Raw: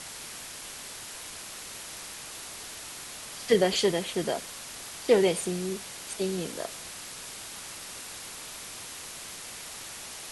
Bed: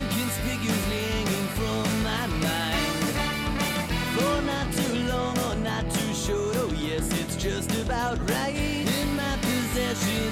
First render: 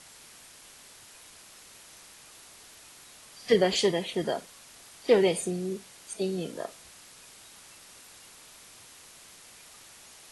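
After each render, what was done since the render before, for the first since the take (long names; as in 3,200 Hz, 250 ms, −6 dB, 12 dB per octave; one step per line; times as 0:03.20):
noise reduction from a noise print 10 dB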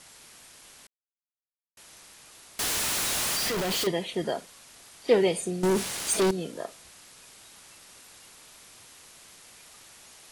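0:00.87–0:01.77: silence
0:02.59–0:03.87: sign of each sample alone
0:05.63–0:06.31: leveller curve on the samples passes 5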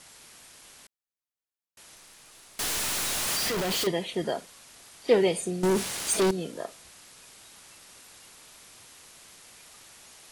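0:01.95–0:03.28: gain on one half-wave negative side −3 dB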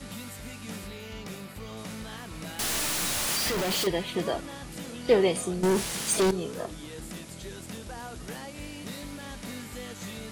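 mix in bed −13.5 dB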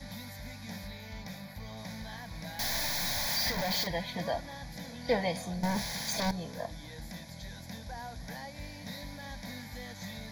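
phaser with its sweep stopped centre 1,900 Hz, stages 8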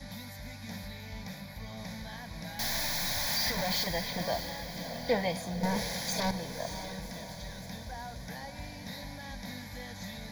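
feedback delay with all-pass diffusion 603 ms, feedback 49%, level −9 dB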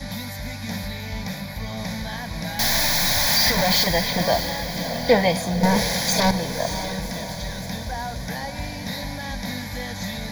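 level +12 dB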